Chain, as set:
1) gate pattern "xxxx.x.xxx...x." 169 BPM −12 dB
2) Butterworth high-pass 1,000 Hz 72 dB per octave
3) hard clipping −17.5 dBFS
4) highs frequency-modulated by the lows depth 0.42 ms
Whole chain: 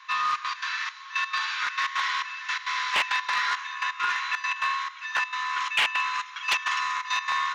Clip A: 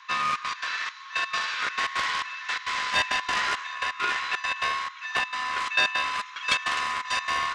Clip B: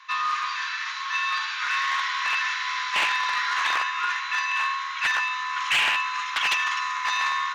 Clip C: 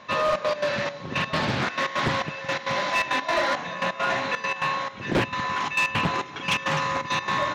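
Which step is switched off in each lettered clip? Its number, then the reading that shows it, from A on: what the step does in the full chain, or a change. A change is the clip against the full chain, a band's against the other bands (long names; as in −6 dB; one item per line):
3, distortion level −22 dB
1, change in crest factor −2.5 dB
2, 500 Hz band +24.5 dB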